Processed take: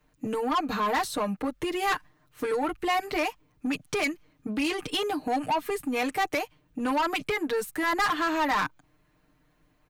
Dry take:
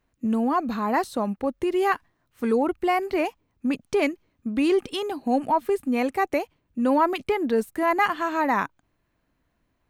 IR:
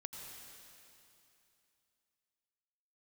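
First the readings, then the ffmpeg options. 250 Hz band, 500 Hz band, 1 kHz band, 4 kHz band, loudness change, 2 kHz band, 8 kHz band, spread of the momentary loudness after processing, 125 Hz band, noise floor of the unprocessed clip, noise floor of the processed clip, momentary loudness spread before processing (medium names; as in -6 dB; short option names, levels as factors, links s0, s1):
-6.0 dB, -6.0 dB, -3.0 dB, +4.5 dB, -3.5 dB, +0.5 dB, +5.5 dB, 7 LU, -2.5 dB, -73 dBFS, -67 dBFS, 7 LU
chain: -filter_complex "[0:a]aecho=1:1:6.6:0.98,acrossover=split=130|880[s0][s1][s2];[s1]acompressor=threshold=0.0316:ratio=6[s3];[s0][s3][s2]amix=inputs=3:normalize=0,asoftclip=type=tanh:threshold=0.0596,volume=1.41"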